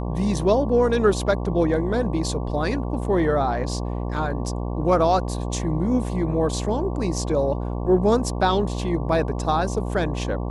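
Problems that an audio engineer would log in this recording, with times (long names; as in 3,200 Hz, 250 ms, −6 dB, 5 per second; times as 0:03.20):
mains buzz 60 Hz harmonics 19 −27 dBFS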